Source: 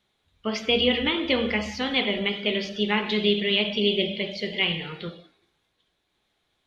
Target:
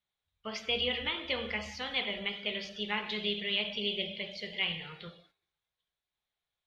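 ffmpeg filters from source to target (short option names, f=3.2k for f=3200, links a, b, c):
-af "agate=range=-9dB:threshold=-54dB:ratio=16:detection=peak,equalizer=f=290:w=1.3:g=-12.5,volume=-7.5dB"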